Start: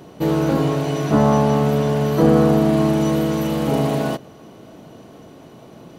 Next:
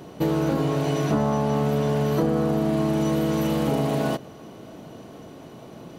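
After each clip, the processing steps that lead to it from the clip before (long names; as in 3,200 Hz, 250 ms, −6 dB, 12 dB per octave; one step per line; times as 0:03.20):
downward compressor, threshold −19 dBFS, peak gain reduction 10 dB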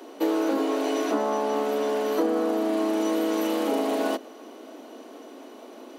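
Butterworth high-pass 240 Hz 72 dB per octave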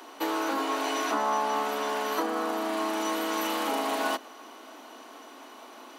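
low shelf with overshoot 710 Hz −9 dB, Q 1.5
level +2.5 dB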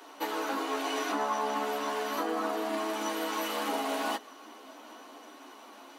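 multi-voice chorus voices 6, 0.85 Hz, delay 12 ms, depth 2.3 ms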